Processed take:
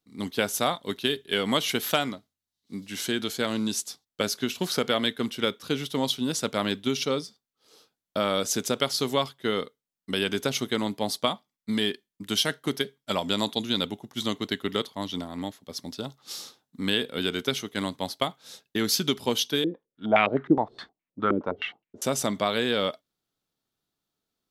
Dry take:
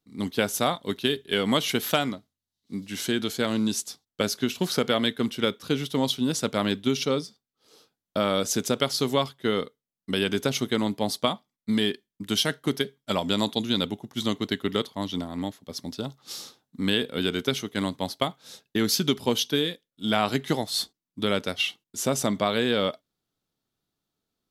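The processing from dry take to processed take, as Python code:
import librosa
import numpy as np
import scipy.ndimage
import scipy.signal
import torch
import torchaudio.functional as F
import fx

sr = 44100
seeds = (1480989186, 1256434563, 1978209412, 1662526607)

y = fx.low_shelf(x, sr, hz=350.0, db=-4.5)
y = fx.filter_held_lowpass(y, sr, hz=9.6, low_hz=320.0, high_hz=2300.0, at=(19.64, 22.02))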